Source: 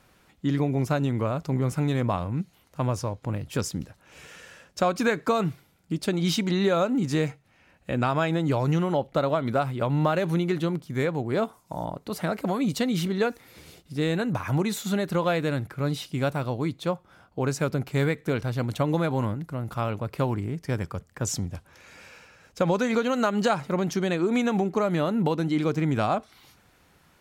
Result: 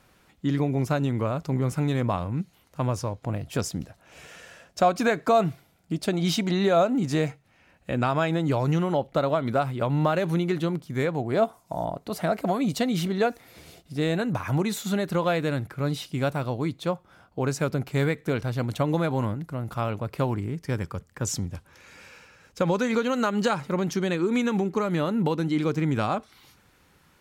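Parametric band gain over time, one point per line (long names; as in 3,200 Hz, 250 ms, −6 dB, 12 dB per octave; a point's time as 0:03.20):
parametric band 680 Hz 0.22 octaves
0 dB
from 0:03.21 +9.5 dB
from 0:07.29 +1.5 dB
from 0:11.15 +8.5 dB
from 0:14.20 +1 dB
from 0:20.41 −6.5 dB
from 0:24.15 −14.5 dB
from 0:24.91 −6.5 dB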